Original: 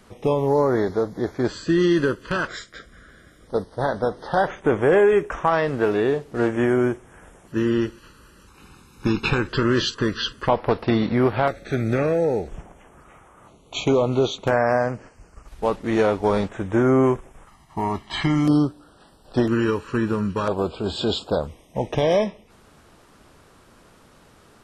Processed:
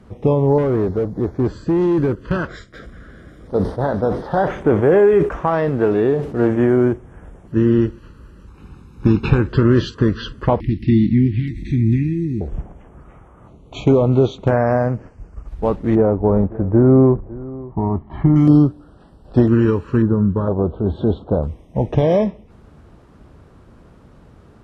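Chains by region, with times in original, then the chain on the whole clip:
0.58–2.17 s: peaking EQ 2.7 kHz -5 dB 1.7 oct + short-mantissa float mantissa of 4-bit + hard clipper -19 dBFS
2.73–6.93 s: companding laws mixed up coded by mu + bass shelf 130 Hz -8 dB + decay stretcher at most 100 dB/s
10.60–12.41 s: Chebyshev band-stop 340–1900 Hz, order 5 + upward compressor, threshold -27 dBFS
15.95–18.36 s: low-pass 1 kHz + delay 556 ms -19.5 dB
20.02–21.43 s: boxcar filter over 18 samples + tape noise reduction on one side only encoder only
whole clip: high-pass 44 Hz; tilt EQ -3.5 dB/octave

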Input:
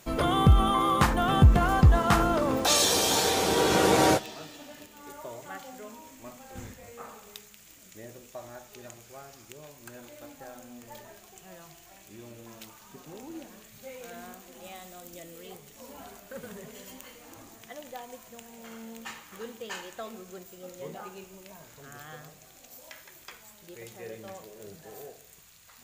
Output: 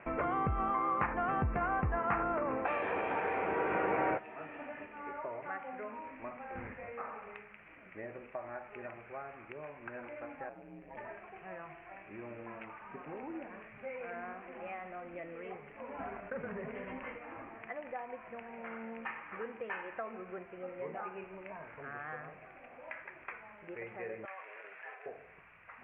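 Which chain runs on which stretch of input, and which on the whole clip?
10.49–10.97 s: peaking EQ 1.3 kHz -11.5 dB 1.7 oct + ring modulator 70 Hz
15.98–17.18 s: expander -44 dBFS + bass shelf 320 Hz +7 dB + level flattener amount 50%
24.25–25.06 s: high-pass 1.4 kHz + level flattener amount 100%
whole clip: steep low-pass 2.5 kHz 72 dB/octave; bass shelf 320 Hz -12 dB; compression 2:1, threshold -48 dBFS; trim +7 dB

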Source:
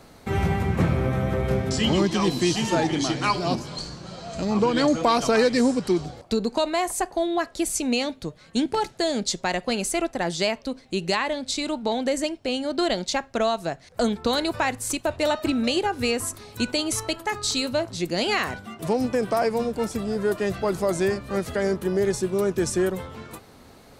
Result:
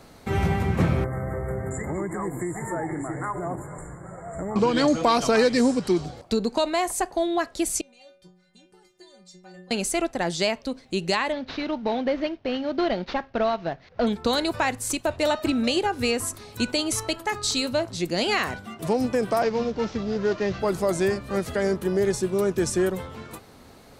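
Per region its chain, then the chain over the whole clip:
1.04–4.56 s: peaking EQ 230 Hz -14 dB 0.27 oct + compression 3:1, threshold -26 dBFS + brick-wall FIR band-stop 2.2–6.9 kHz
7.81–9.71 s: compression 2.5:1, threshold -32 dBFS + inharmonic resonator 180 Hz, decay 0.58 s, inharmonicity 0.008
11.32–14.07 s: CVSD coder 32 kbps + low-pass 3.1 kHz
19.42–20.60 s: CVSD coder 32 kbps + band-stop 690 Hz, Q 22 + tape noise reduction on one side only decoder only
whole clip: none

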